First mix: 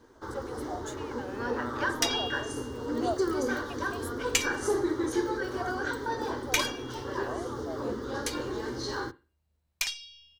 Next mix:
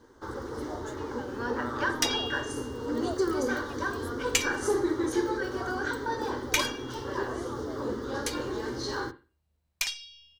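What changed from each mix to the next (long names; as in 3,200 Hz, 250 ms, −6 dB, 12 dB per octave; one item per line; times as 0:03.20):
speech −6.5 dB
first sound: send +6.0 dB
second sound: send +7.5 dB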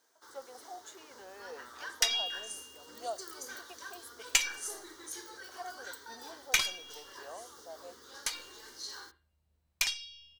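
first sound: add first difference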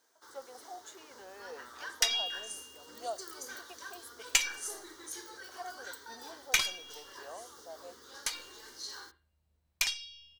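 nothing changed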